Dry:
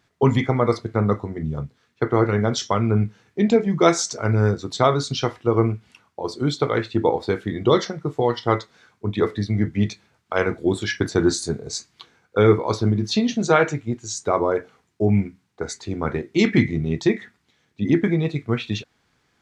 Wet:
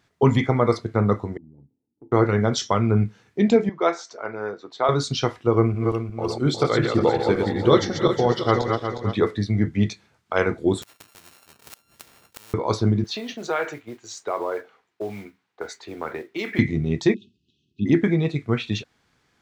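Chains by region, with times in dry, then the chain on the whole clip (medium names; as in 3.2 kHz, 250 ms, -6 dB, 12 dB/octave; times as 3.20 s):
1.37–2.12 s: median filter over 41 samples + cascade formant filter u + compression 2:1, threshold -54 dBFS
3.69–4.89 s: high-pass 530 Hz + tape spacing loss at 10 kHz 28 dB
5.56–9.18 s: backward echo that repeats 180 ms, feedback 60%, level -4 dB + band-stop 930 Hz
10.82–12.54 s: sorted samples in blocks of 32 samples + inverted gate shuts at -19 dBFS, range -29 dB + spectrum-flattening compressor 4:1
13.04–16.59 s: modulation noise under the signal 25 dB + compression 2.5:1, threshold -21 dBFS + three-band isolator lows -17 dB, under 350 Hz, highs -12 dB, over 4.2 kHz
17.14–17.86 s: brick-wall FIR band-stop 420–2500 Hz + distance through air 160 m
whole clip: none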